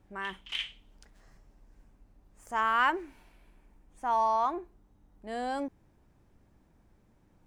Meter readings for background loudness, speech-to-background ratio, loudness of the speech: −37.5 LKFS, 7.0 dB, −30.5 LKFS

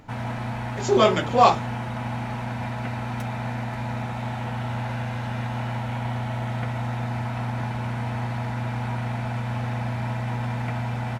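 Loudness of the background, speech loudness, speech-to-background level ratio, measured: −29.5 LKFS, −20.0 LKFS, 9.5 dB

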